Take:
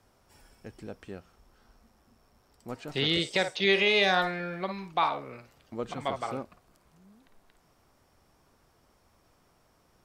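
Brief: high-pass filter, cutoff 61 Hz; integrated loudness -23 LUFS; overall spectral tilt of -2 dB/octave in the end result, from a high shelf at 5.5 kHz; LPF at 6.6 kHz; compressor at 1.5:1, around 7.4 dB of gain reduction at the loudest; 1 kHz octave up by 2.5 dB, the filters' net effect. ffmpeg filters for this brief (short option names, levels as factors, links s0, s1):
-af "highpass=61,lowpass=6600,equalizer=f=1000:t=o:g=3.5,highshelf=f=5500:g=-4,acompressor=threshold=0.01:ratio=1.5,volume=3.98"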